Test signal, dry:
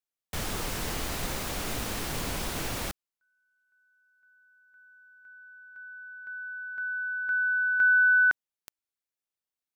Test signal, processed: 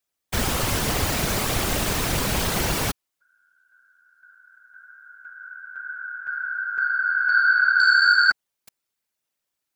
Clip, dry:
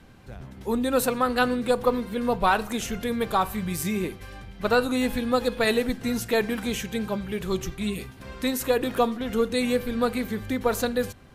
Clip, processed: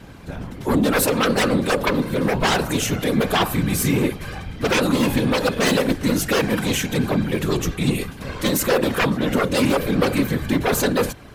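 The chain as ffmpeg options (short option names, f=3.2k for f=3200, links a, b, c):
-af "aeval=exprs='0.376*sin(PI/2*3.98*val(0)/0.376)':c=same,afftfilt=real='hypot(re,im)*cos(2*PI*random(0))':imag='hypot(re,im)*sin(2*PI*random(1))':win_size=512:overlap=0.75"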